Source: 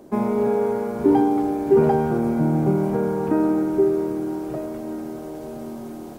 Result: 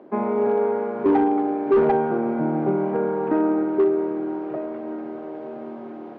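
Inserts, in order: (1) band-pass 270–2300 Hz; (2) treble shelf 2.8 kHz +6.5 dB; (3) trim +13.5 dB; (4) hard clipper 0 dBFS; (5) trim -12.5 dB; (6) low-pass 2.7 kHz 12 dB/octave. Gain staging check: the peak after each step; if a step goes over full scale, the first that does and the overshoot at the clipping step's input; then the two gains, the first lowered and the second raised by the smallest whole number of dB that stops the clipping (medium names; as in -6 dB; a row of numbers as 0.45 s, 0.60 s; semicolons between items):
-7.5 dBFS, -7.5 dBFS, +6.0 dBFS, 0.0 dBFS, -12.5 dBFS, -12.0 dBFS; step 3, 6.0 dB; step 3 +7.5 dB, step 5 -6.5 dB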